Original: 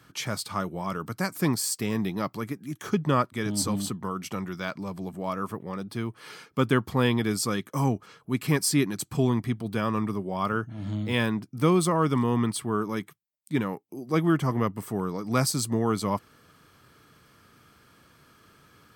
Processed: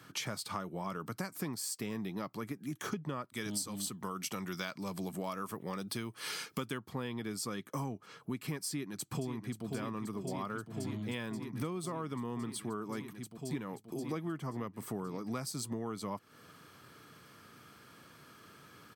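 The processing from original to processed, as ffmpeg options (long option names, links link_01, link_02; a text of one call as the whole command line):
ffmpeg -i in.wav -filter_complex "[0:a]asplit=3[link_01][link_02][link_03];[link_01]afade=type=out:start_time=3.28:duration=0.02[link_04];[link_02]highshelf=frequency=2600:gain=11,afade=type=in:start_time=3.28:duration=0.02,afade=type=out:start_time=6.77:duration=0.02[link_05];[link_03]afade=type=in:start_time=6.77:duration=0.02[link_06];[link_04][link_05][link_06]amix=inputs=3:normalize=0,asplit=2[link_07][link_08];[link_08]afade=type=in:start_time=8.68:duration=0.01,afade=type=out:start_time=9.66:duration=0.01,aecho=0:1:530|1060|1590|2120|2650|3180|3710|4240|4770|5300|5830|6360:0.354813|0.301591|0.256353|0.2179|0.185215|0.157433|0.133818|0.113745|0.0966833|0.0821808|0.0698537|0.0593756[link_09];[link_07][link_09]amix=inputs=2:normalize=0,highpass=110,acompressor=threshold=-36dB:ratio=10,volume=1dB" out.wav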